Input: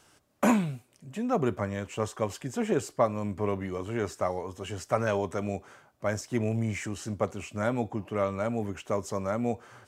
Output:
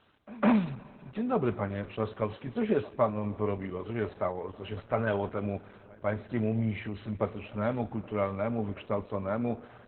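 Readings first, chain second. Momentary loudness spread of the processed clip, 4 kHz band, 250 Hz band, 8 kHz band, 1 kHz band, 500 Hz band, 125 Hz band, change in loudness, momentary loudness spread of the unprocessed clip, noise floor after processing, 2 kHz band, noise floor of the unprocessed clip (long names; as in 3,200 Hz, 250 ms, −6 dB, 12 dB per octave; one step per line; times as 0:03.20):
8 LU, −5.0 dB, −0.5 dB, below −40 dB, −2.5 dB, −1.5 dB, −1.0 dB, −1.0 dB, 7 LU, −54 dBFS, −2.5 dB, −64 dBFS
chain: echo ahead of the sound 157 ms −22.5 dB
coupled-rooms reverb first 0.21 s, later 2.6 s, from −17 dB, DRR 8.5 dB
level −1.5 dB
Opus 8 kbit/s 48,000 Hz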